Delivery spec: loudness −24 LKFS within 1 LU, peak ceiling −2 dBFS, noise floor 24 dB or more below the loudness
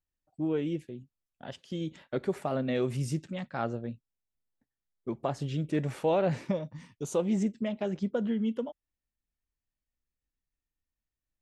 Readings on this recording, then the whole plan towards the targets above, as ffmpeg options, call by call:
integrated loudness −32.5 LKFS; sample peak −16.5 dBFS; target loudness −24.0 LKFS
→ -af "volume=8.5dB"

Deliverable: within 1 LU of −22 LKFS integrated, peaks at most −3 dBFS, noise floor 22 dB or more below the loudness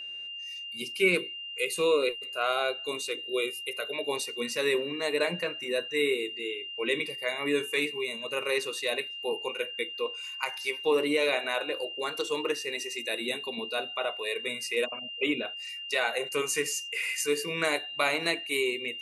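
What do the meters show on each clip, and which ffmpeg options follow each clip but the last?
interfering tone 2,800 Hz; level of the tone −37 dBFS; integrated loudness −29.5 LKFS; sample peak −12.5 dBFS; target loudness −22.0 LKFS
→ -af "bandreject=frequency=2800:width=30"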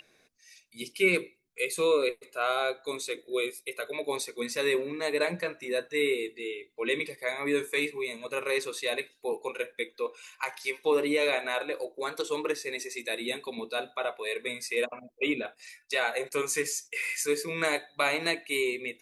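interfering tone none found; integrated loudness −30.5 LKFS; sample peak −13.0 dBFS; target loudness −22.0 LKFS
→ -af "volume=8.5dB"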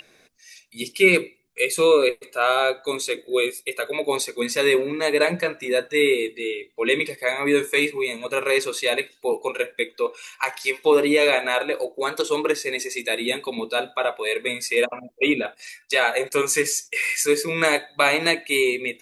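integrated loudness −22.0 LKFS; sample peak −4.5 dBFS; background noise floor −59 dBFS

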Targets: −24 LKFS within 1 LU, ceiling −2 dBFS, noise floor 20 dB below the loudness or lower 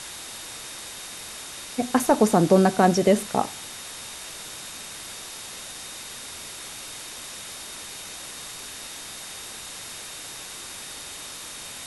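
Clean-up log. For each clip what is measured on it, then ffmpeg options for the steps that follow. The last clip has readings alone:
interfering tone 3,700 Hz; level of the tone −46 dBFS; background noise floor −39 dBFS; target noise floor −48 dBFS; integrated loudness −27.5 LKFS; sample peak −5.5 dBFS; target loudness −24.0 LKFS
→ -af "bandreject=frequency=3700:width=30"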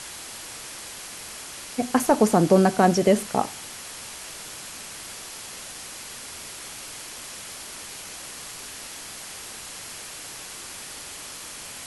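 interfering tone none found; background noise floor −39 dBFS; target noise floor −48 dBFS
→ -af "afftdn=noise_reduction=9:noise_floor=-39"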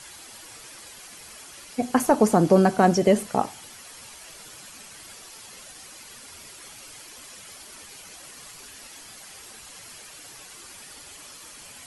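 background noise floor −45 dBFS; integrated loudness −21.0 LKFS; sample peak −5.5 dBFS; target loudness −24.0 LKFS
→ -af "volume=-3dB"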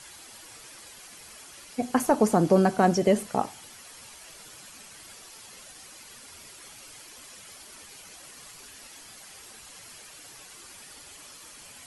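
integrated loudness −24.0 LKFS; sample peak −8.5 dBFS; background noise floor −48 dBFS

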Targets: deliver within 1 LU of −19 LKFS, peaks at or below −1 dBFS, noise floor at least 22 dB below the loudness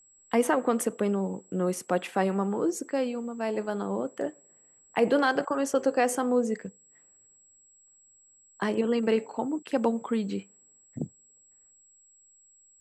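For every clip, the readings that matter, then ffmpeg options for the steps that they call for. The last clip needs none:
interfering tone 7,700 Hz; level of the tone −57 dBFS; integrated loudness −28.5 LKFS; sample peak −11.5 dBFS; target loudness −19.0 LKFS
→ -af "bandreject=frequency=7700:width=30"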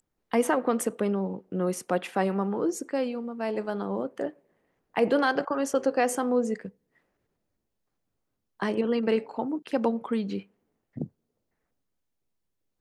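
interfering tone none found; integrated loudness −28.5 LKFS; sample peak −11.5 dBFS; target loudness −19.0 LKFS
→ -af "volume=9.5dB"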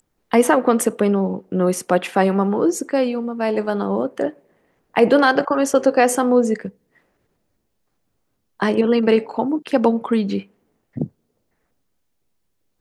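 integrated loudness −19.0 LKFS; sample peak −2.0 dBFS; background noise floor −71 dBFS

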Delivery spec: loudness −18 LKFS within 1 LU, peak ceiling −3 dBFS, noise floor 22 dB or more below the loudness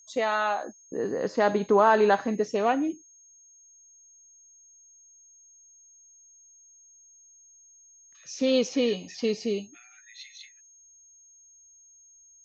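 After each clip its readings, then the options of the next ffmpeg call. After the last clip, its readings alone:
interfering tone 6,500 Hz; level of the tone −53 dBFS; integrated loudness −25.5 LKFS; sample peak −9.0 dBFS; target loudness −18.0 LKFS
→ -af "bandreject=frequency=6500:width=30"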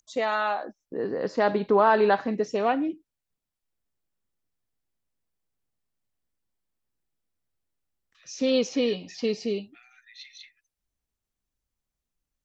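interfering tone none found; integrated loudness −25.5 LKFS; sample peak −9.0 dBFS; target loudness −18.0 LKFS
→ -af "volume=7.5dB,alimiter=limit=-3dB:level=0:latency=1"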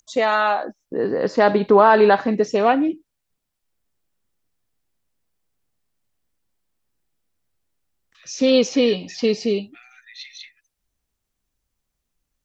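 integrated loudness −18.5 LKFS; sample peak −3.0 dBFS; background noise floor −79 dBFS

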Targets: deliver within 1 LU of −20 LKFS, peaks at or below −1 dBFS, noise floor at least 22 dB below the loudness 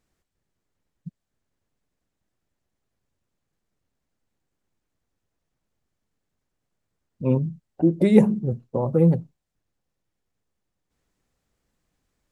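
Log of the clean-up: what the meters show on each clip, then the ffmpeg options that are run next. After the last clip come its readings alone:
integrated loudness −21.5 LKFS; sample peak −1.5 dBFS; target loudness −20.0 LKFS
→ -af "volume=1.5dB,alimiter=limit=-1dB:level=0:latency=1"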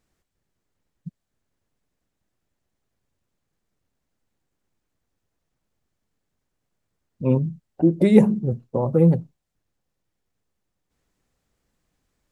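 integrated loudness −20.0 LKFS; sample peak −1.0 dBFS; background noise floor −79 dBFS

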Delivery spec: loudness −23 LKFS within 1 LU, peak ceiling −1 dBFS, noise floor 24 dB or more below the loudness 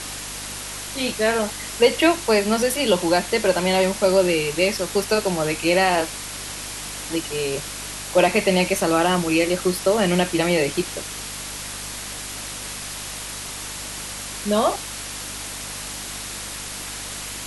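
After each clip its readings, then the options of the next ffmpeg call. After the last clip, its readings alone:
mains hum 50 Hz; hum harmonics up to 300 Hz; level of the hum −41 dBFS; background noise floor −33 dBFS; target noise floor −47 dBFS; integrated loudness −22.5 LKFS; sample peak −4.0 dBFS; target loudness −23.0 LKFS
→ -af "bandreject=frequency=50:width_type=h:width=4,bandreject=frequency=100:width_type=h:width=4,bandreject=frequency=150:width_type=h:width=4,bandreject=frequency=200:width_type=h:width=4,bandreject=frequency=250:width_type=h:width=4,bandreject=frequency=300:width_type=h:width=4"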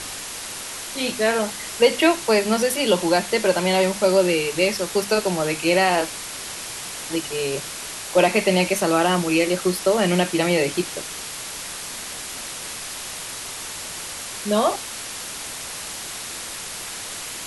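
mains hum none found; background noise floor −33 dBFS; target noise floor −47 dBFS
→ -af "afftdn=noise_reduction=14:noise_floor=-33"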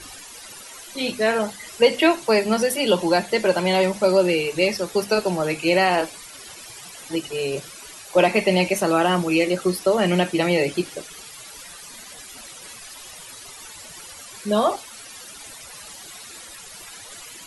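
background noise floor −41 dBFS; target noise floor −45 dBFS
→ -af "afftdn=noise_reduction=6:noise_floor=-41"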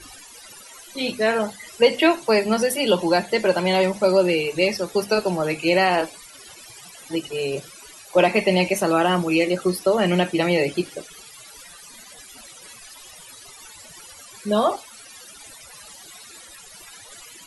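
background noise floor −44 dBFS; target noise floor −45 dBFS
→ -af "afftdn=noise_reduction=6:noise_floor=-44"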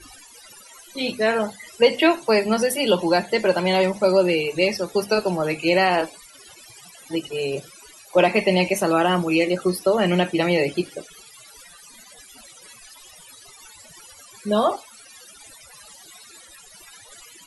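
background noise floor −47 dBFS; integrated loudness −21.0 LKFS; sample peak −4.5 dBFS; target loudness −23.0 LKFS
→ -af "volume=-2dB"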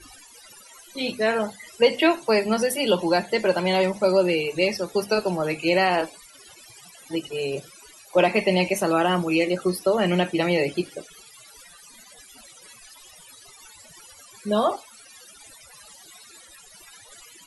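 integrated loudness −23.0 LKFS; sample peak −6.5 dBFS; background noise floor −49 dBFS

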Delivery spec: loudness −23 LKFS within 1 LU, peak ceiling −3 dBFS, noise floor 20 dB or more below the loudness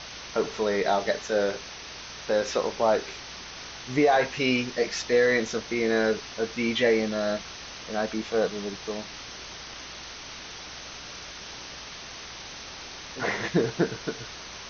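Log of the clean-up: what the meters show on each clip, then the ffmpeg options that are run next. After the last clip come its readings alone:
mains hum 60 Hz; hum harmonics up to 180 Hz; level of the hum −55 dBFS; background noise floor −41 dBFS; target noise floor −47 dBFS; integrated loudness −27.0 LKFS; sample peak −10.5 dBFS; target loudness −23.0 LKFS
→ -af "bandreject=frequency=60:width_type=h:width=4,bandreject=frequency=120:width_type=h:width=4,bandreject=frequency=180:width_type=h:width=4"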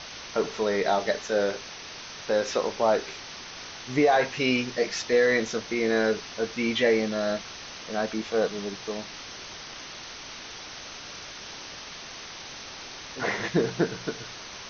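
mains hum none found; background noise floor −41 dBFS; target noise floor −47 dBFS
→ -af "afftdn=noise_reduction=6:noise_floor=-41"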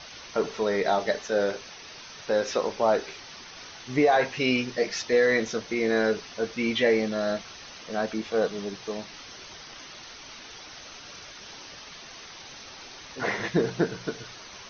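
background noise floor −45 dBFS; target noise floor −47 dBFS
→ -af "afftdn=noise_reduction=6:noise_floor=-45"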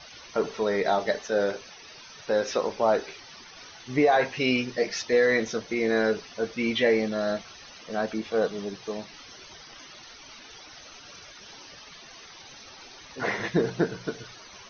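background noise floor −48 dBFS; integrated loudness −26.5 LKFS; sample peak −10.0 dBFS; target loudness −23.0 LKFS
→ -af "volume=3.5dB"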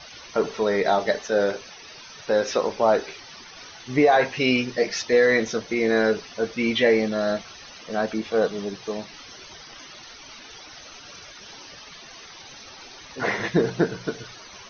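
integrated loudness −23.0 LKFS; sample peak −6.5 dBFS; background noise floor −44 dBFS

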